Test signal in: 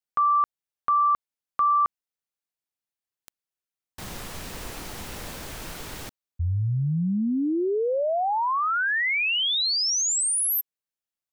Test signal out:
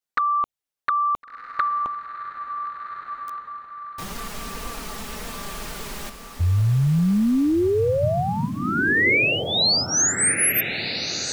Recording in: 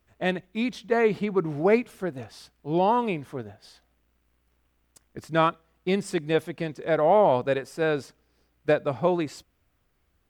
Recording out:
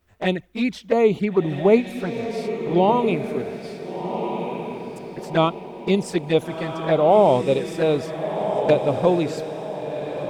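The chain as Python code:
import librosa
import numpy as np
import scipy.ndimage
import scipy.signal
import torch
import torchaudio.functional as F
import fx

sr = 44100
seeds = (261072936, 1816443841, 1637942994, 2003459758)

y = fx.env_flanger(x, sr, rest_ms=11.8, full_db=-21.0)
y = fx.echo_diffused(y, sr, ms=1435, feedback_pct=42, wet_db=-7.0)
y = y * librosa.db_to_amplitude(6.0)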